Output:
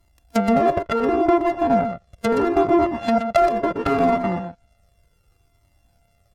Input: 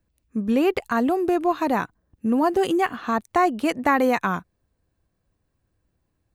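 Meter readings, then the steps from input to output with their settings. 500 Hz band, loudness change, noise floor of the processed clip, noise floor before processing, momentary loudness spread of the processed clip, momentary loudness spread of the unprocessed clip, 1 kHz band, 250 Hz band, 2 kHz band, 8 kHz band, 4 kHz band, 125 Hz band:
+4.5 dB, +2.5 dB, −64 dBFS, −75 dBFS, 8 LU, 8 LU, +2.5 dB, +1.5 dB, −3.0 dB, can't be measured, −0.5 dB, +7.0 dB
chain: samples sorted by size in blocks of 64 samples
treble cut that deepens with the level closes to 950 Hz, closed at −20.5 dBFS
in parallel at 0 dB: downward compressor 6 to 1, threshold −30 dBFS, peak gain reduction 12 dB
on the sum: hard clipping −13 dBFS, distortion −26 dB
high-shelf EQ 8,100 Hz +6.5 dB
on a send: single-tap delay 123 ms −8.5 dB
on the sum: flanger whose copies keep moving one way falling 0.71 Hz
level +7 dB

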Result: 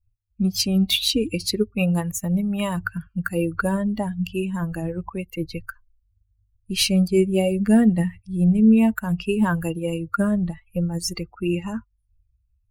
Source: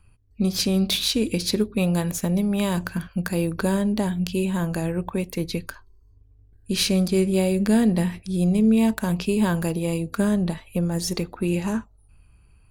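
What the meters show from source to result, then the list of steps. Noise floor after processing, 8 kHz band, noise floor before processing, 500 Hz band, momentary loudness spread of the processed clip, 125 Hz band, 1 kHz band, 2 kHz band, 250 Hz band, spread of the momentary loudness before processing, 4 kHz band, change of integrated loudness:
−69 dBFS, 0.0 dB, −55 dBFS, 0.0 dB, 12 LU, +0.5 dB, +1.5 dB, +2.0 dB, +1.0 dB, 8 LU, +1.5 dB, +1.0 dB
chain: spectral dynamics exaggerated over time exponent 2
hollow resonant body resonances 1,400/2,800 Hz, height 12 dB, ringing for 35 ms
level +5 dB

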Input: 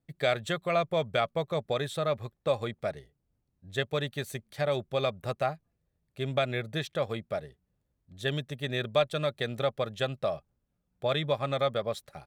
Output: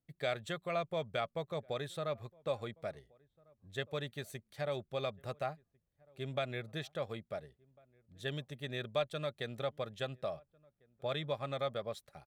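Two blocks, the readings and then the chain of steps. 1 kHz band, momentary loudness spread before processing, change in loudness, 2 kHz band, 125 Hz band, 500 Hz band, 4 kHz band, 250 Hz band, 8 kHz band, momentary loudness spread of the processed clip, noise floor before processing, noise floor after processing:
−8.5 dB, 8 LU, −8.5 dB, −8.5 dB, −8.5 dB, −8.5 dB, −8.5 dB, −8.5 dB, −8.5 dB, 8 LU, −79 dBFS, −83 dBFS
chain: slap from a distant wall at 240 metres, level −27 dB
level −8.5 dB

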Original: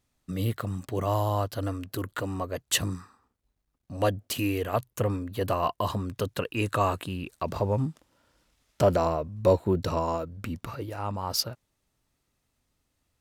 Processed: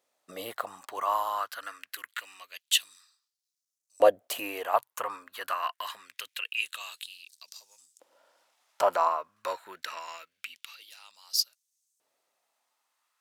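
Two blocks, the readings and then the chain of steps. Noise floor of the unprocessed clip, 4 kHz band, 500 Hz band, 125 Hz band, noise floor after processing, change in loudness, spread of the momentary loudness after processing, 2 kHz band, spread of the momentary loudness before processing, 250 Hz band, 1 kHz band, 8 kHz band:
−78 dBFS, +2.5 dB, −3.5 dB, below −35 dB, below −85 dBFS, −1.5 dB, 21 LU, +1.5 dB, 10 LU, −18.5 dB, +0.5 dB, −1.0 dB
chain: auto-filter high-pass saw up 0.25 Hz 520–7,300 Hz
dynamic equaliser 5,100 Hz, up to −6 dB, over −45 dBFS, Q 1.3

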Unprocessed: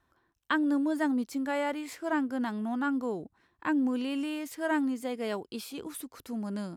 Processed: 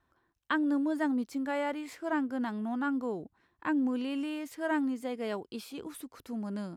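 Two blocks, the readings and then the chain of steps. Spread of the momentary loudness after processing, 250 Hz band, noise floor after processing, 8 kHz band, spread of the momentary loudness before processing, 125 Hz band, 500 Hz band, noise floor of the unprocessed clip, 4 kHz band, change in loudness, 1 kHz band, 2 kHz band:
12 LU, −1.5 dB, −77 dBFS, can't be measured, 12 LU, −1.5 dB, −1.5 dB, −76 dBFS, −3.5 dB, −1.5 dB, −1.5 dB, −2.0 dB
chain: high-shelf EQ 4,700 Hz −5.5 dB
level −1.5 dB

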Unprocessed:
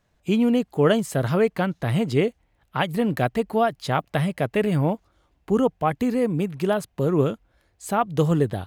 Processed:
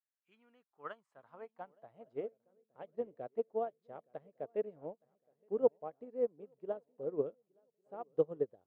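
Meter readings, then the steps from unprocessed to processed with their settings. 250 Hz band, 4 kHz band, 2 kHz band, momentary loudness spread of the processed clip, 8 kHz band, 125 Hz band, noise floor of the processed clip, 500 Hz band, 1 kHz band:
−26.5 dB, below −35 dB, below −25 dB, 19 LU, below −40 dB, −33.5 dB, below −85 dBFS, −13.5 dB, −21.5 dB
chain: feedback echo with a long and a short gap by turns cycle 1,158 ms, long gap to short 3 to 1, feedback 35%, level −16.5 dB
band-pass filter sweep 1,700 Hz → 500 Hz, 0:00.23–0:02.47
expander for the loud parts 2.5 to 1, over −35 dBFS
level −3.5 dB

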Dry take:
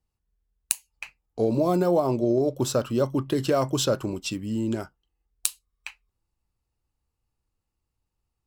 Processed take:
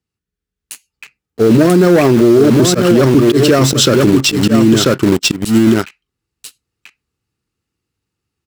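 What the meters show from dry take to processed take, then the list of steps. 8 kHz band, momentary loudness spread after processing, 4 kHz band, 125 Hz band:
+12.5 dB, 4 LU, +18.5 dB, +16.0 dB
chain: leveller curve on the samples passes 3
high-pass filter 120 Hz 12 dB per octave
high-shelf EQ 10,000 Hz −10.5 dB
on a send: single-tap delay 989 ms −6.5 dB
on the sum: automatic gain control gain up to 5 dB
flat-topped bell 760 Hz −9 dB 1.2 octaves
in parallel at −7.5 dB: bit reduction 4 bits
on the sum: volume swells 137 ms
boost into a limiter +12 dB
level −1 dB

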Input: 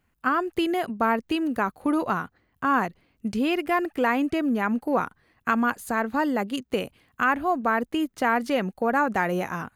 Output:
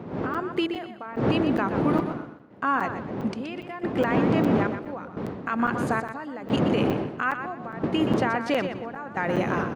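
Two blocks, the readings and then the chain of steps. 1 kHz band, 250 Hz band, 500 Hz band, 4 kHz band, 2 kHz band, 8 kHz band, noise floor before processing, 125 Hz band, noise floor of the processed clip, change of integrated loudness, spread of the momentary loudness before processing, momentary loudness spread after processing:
−3.5 dB, +0.5 dB, +0.5 dB, 0.0 dB, −3.5 dB, can't be measured, −71 dBFS, +9.5 dB, −41 dBFS, −1.0 dB, 6 LU, 11 LU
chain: wind on the microphone 250 Hz −21 dBFS
high-pass filter 140 Hz 12 dB per octave
spectral tilt +2.5 dB per octave
downward compressor, threshold −23 dBFS, peak gain reduction 11.5 dB
brickwall limiter −18 dBFS, peak gain reduction 9 dB
automatic gain control gain up to 7 dB
gate pattern "xxxx...x" 90 BPM −12 dB
head-to-tape spacing loss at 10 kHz 24 dB
repeating echo 123 ms, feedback 31%, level −9 dB
regular buffer underruns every 0.41 s, samples 256, zero, from 0:00.34

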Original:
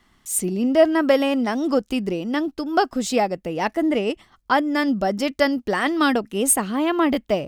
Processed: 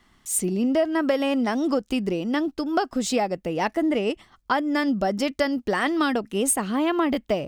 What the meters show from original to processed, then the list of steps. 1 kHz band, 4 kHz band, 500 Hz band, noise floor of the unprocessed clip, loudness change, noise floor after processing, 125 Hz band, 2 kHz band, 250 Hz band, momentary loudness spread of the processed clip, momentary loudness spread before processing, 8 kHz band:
−3.5 dB, −3.0 dB, −3.5 dB, −63 dBFS, −3.0 dB, −64 dBFS, −1.0 dB, −3.5 dB, −2.0 dB, 4 LU, 7 LU, −3.0 dB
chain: parametric band 12,000 Hz −4 dB 0.22 octaves
downward compressor 4 to 1, threshold −19 dBFS, peak gain reduction 9 dB

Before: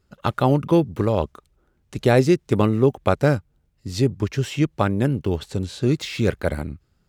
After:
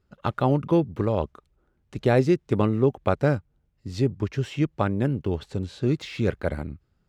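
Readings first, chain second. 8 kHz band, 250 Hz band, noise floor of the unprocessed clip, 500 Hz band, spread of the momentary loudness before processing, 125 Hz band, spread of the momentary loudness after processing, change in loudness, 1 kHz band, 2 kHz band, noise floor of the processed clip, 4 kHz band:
below −10 dB, −3.5 dB, −66 dBFS, −3.5 dB, 11 LU, −3.5 dB, 11 LU, −3.5 dB, −4.0 dB, −5.0 dB, −70 dBFS, −7.0 dB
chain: low-pass filter 3,100 Hz 6 dB per octave
level −3.5 dB

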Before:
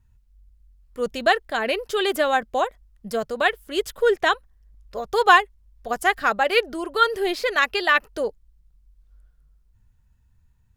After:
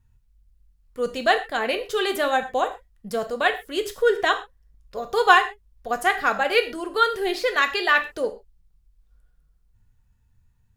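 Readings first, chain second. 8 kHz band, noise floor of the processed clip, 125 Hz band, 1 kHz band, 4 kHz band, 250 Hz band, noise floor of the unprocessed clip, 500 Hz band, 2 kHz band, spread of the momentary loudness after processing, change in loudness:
−0.5 dB, −63 dBFS, can't be measured, −0.5 dB, −0.5 dB, −1.0 dB, −61 dBFS, −0.5 dB, −0.5 dB, 12 LU, −0.5 dB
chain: reverb whose tail is shaped and stops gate 150 ms falling, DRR 6.5 dB
level −1.5 dB

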